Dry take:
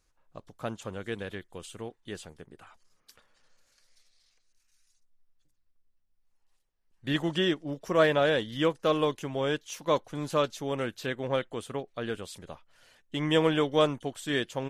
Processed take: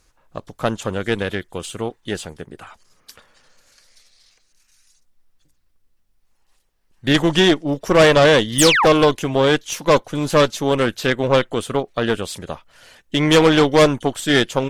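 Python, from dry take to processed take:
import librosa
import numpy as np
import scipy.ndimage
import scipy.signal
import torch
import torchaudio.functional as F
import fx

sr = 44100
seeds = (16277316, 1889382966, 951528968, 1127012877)

y = fx.spec_paint(x, sr, seeds[0], shape='fall', start_s=8.58, length_s=0.28, low_hz=680.0, high_hz=10000.0, level_db=-29.0)
y = fx.cheby_harmonics(y, sr, harmonics=(5, 8), levels_db=(-14, -15), full_scale_db=-10.0)
y = y * 10.0 ** (7.5 / 20.0)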